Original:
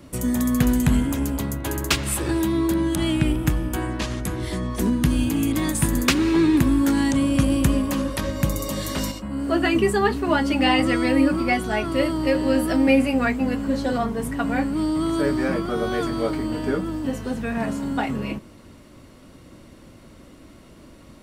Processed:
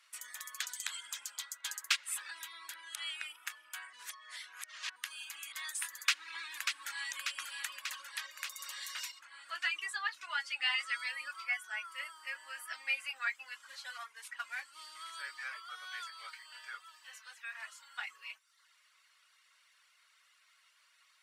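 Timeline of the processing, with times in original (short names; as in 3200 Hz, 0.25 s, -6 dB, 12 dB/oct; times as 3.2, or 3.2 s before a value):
0.6–1.82 spectral gain 3100–9100 Hz +7 dB
3.93–4.96 reverse
5.92–7.08 echo throw 0.59 s, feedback 70%, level -5 dB
9.2–10.94 LPF 11000 Hz
11.47–12.73 bell 4000 Hz -13 dB 0.55 oct
13.55–15.13 CVSD 64 kbps
15.75–17.99 low shelf 300 Hz -10.5 dB
whole clip: HPF 1400 Hz 24 dB/oct; reverb removal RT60 0.67 s; high shelf 11000 Hz -11.5 dB; gain -7 dB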